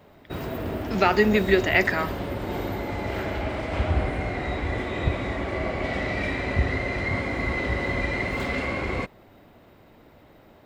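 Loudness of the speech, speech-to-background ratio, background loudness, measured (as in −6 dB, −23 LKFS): −21.5 LKFS, 7.0 dB, −28.5 LKFS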